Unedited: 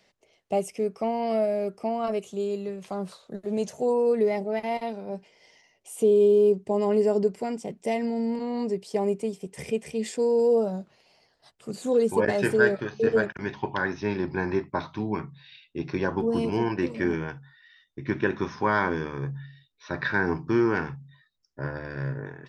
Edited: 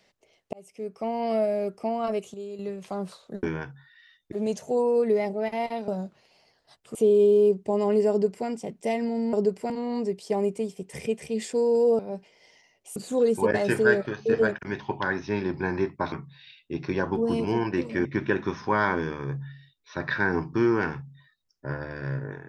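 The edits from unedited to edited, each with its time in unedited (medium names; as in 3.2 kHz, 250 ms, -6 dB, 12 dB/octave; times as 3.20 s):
0.53–1.25 s: fade in
2.34–2.59 s: gain -8.5 dB
4.99–5.96 s: swap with 10.63–11.70 s
7.11–7.48 s: copy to 8.34 s
14.86–15.17 s: delete
17.10–17.99 s: move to 3.43 s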